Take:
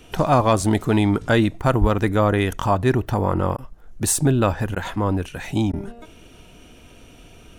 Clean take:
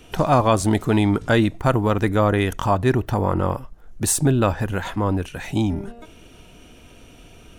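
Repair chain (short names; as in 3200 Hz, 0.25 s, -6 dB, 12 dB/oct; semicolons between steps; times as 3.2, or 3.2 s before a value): clip repair -7 dBFS; de-plosive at 1.8; interpolate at 3.57/4.75/5.72, 12 ms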